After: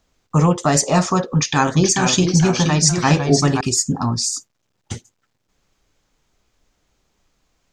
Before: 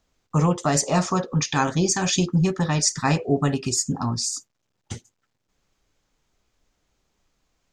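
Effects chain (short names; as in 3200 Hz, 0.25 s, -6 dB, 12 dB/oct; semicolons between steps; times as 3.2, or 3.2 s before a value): 1.24–3.61 echoes that change speed 0.419 s, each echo -1 st, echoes 2, each echo -6 dB; gain +5 dB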